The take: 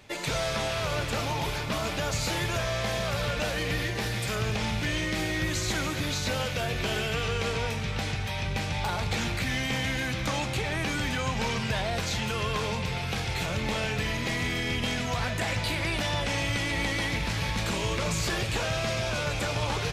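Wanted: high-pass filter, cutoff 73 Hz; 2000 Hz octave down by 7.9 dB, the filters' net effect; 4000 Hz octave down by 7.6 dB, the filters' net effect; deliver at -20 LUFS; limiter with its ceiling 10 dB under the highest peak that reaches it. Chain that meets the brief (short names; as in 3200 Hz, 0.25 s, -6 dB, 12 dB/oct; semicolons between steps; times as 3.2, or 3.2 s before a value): HPF 73 Hz; bell 2000 Hz -8 dB; bell 4000 Hz -7 dB; gain +17 dB; limiter -11.5 dBFS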